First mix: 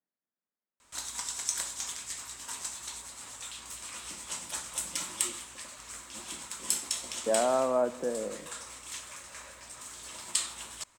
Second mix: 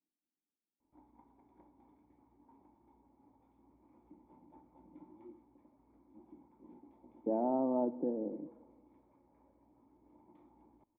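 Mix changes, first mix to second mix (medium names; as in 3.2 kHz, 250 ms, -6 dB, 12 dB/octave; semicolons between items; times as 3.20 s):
speech +9.5 dB; master: add cascade formant filter u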